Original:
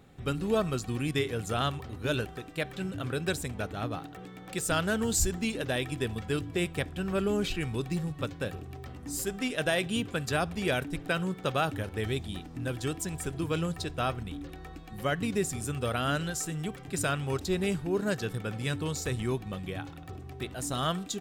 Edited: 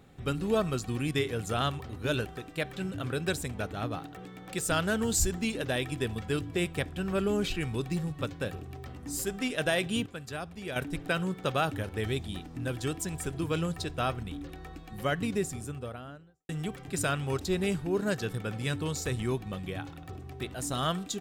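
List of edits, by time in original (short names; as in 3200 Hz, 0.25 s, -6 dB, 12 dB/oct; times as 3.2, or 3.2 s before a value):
10.06–10.76 gain -9 dB
15.11–16.49 studio fade out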